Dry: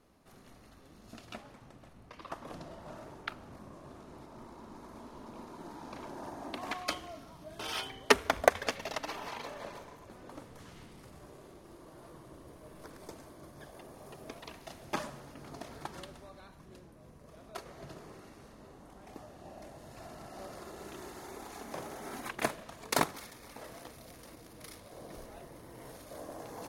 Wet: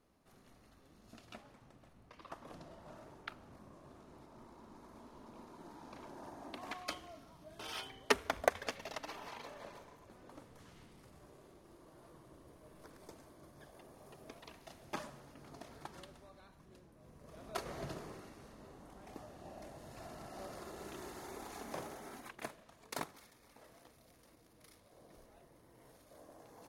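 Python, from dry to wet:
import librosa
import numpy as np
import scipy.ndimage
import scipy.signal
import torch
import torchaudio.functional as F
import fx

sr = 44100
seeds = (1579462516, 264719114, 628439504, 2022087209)

y = fx.gain(x, sr, db=fx.line((16.9, -7.0), (17.74, 5.5), (18.34, -2.0), (21.78, -2.0), (22.42, -13.0)))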